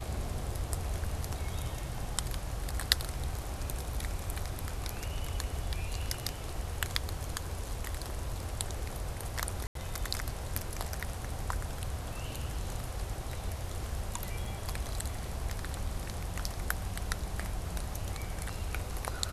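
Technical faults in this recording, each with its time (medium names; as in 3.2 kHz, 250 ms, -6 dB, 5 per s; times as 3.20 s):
9.67–9.75 s: dropout 83 ms
14.45 s: dropout 3 ms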